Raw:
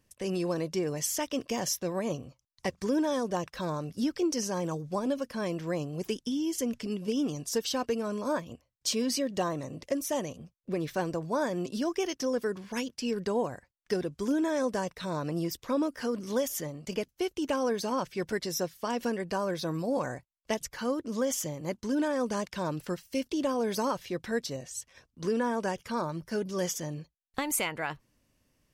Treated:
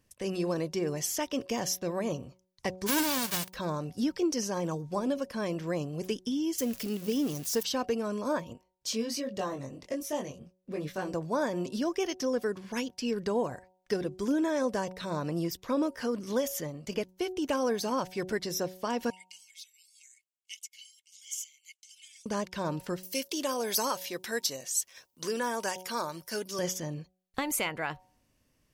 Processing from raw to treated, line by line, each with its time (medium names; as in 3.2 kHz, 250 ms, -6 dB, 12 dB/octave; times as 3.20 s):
2.86–3.53 s: formants flattened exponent 0.1
6.58–7.63 s: zero-crossing glitches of -31 dBFS
8.53–11.13 s: chorus 1.3 Hz, delay 20 ms, depth 2.4 ms
17.46–18.23 s: treble shelf 6.9 kHz +5.5 dB
19.10–22.26 s: rippled Chebyshev high-pass 2.1 kHz, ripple 9 dB
23.03–26.59 s: RIAA curve recording
whole clip: de-hum 185.2 Hz, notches 5; dynamic bell 8.7 kHz, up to -3 dB, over -54 dBFS, Q 2